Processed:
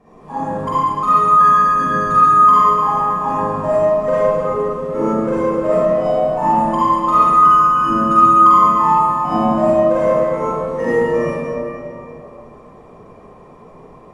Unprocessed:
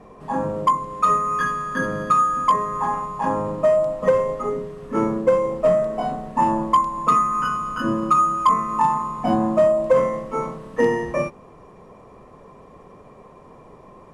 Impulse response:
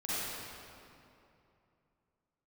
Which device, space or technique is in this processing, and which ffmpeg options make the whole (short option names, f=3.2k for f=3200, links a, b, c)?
stairwell: -filter_complex "[1:a]atrim=start_sample=2205[a];[0:a][a]afir=irnorm=-1:irlink=0,volume=-2.5dB"